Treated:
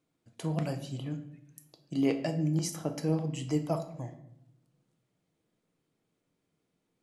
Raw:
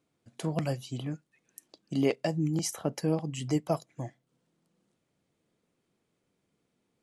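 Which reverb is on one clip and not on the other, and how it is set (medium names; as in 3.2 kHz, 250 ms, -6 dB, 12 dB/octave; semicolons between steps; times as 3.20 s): simulated room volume 200 m³, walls mixed, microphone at 0.51 m; trim -3.5 dB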